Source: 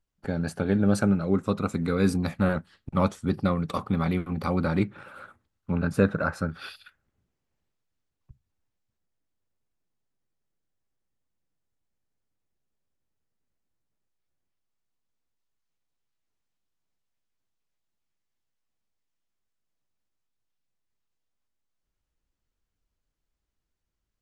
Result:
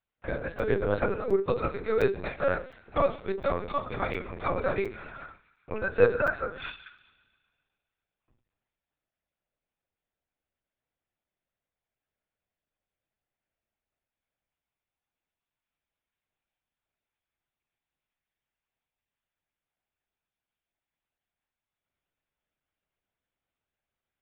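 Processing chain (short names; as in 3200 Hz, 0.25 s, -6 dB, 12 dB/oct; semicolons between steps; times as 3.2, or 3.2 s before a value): resonant low shelf 330 Hz -11 dB, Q 3; thin delay 0.133 s, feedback 60%, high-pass 1800 Hz, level -16.5 dB; reverb RT60 0.40 s, pre-delay 3 ms, DRR 6.5 dB; LPC vocoder at 8 kHz pitch kept; crackling interface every 0.71 s, samples 256, zero, from 0.59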